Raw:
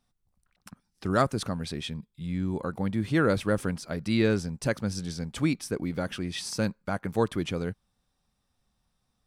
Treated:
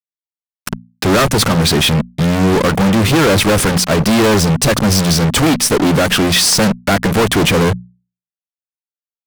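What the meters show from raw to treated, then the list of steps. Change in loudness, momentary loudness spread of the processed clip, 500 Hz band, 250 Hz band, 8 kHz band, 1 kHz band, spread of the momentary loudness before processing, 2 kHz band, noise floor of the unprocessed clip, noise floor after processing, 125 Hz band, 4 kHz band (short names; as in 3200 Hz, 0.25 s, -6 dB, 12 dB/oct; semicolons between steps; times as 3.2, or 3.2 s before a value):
+17.0 dB, 5 LU, +15.0 dB, +15.0 dB, +24.5 dB, +17.0 dB, 10 LU, +17.5 dB, -77 dBFS, under -85 dBFS, +16.5 dB, +23.0 dB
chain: fuzz box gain 46 dB, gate -46 dBFS; notches 60/120/180/240 Hz; gain +3.5 dB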